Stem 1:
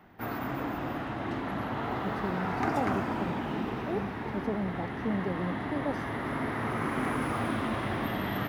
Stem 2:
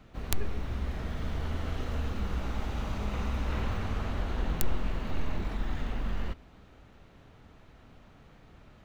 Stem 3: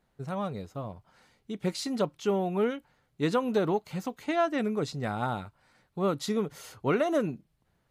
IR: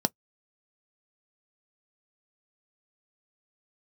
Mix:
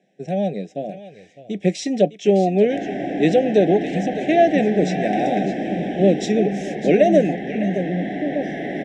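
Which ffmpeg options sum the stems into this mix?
-filter_complex "[0:a]bandreject=f=2500:w=10,asoftclip=type=tanh:threshold=0.0631,adelay=2500,volume=1.19,asplit=2[s0][s1];[s1]volume=0.562[s2];[1:a]adelay=2450,volume=0.168[s3];[2:a]highpass=140,volume=1.33,asplit=3[s4][s5][s6];[s5]volume=0.562[s7];[s6]volume=0.501[s8];[3:a]atrim=start_sample=2205[s9];[s2][s7]amix=inputs=2:normalize=0[s10];[s10][s9]afir=irnorm=-1:irlink=0[s11];[s8]aecho=0:1:608:1[s12];[s0][s3][s4][s11][s12]amix=inputs=5:normalize=0,asuperstop=centerf=1100:order=12:qfactor=1.3,highpass=100,equalizer=f=120:t=q:w=4:g=-7,equalizer=f=240:t=q:w=4:g=-10,equalizer=f=960:t=q:w=4:g=7,equalizer=f=1400:t=q:w=4:g=-6,equalizer=f=2500:t=q:w=4:g=8,equalizer=f=4500:t=q:w=4:g=-9,lowpass=f=7500:w=0.5412,lowpass=f=7500:w=1.3066"

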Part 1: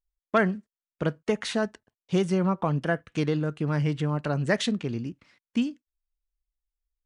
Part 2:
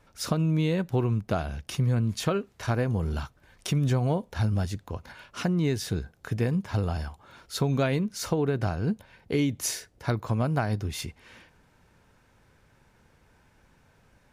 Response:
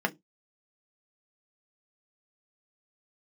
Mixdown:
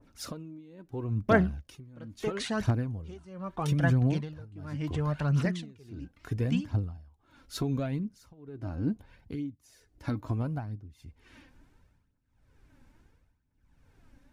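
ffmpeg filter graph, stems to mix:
-filter_complex "[0:a]adelay=950,volume=0.631[s0];[1:a]equalizer=f=280:w=2.6:g=12,alimiter=limit=0.178:level=0:latency=1:release=491,adynamicequalizer=threshold=0.00501:dfrequency=1500:dqfactor=0.7:tfrequency=1500:tqfactor=0.7:attack=5:release=100:ratio=0.375:range=3.5:mode=cutabove:tftype=highshelf,volume=0.531[s1];[s0][s1]amix=inputs=2:normalize=0,asubboost=boost=2.5:cutoff=170,aphaser=in_gain=1:out_gain=1:delay=3.9:decay=0.48:speed=0.74:type=triangular,tremolo=f=0.78:d=0.93"

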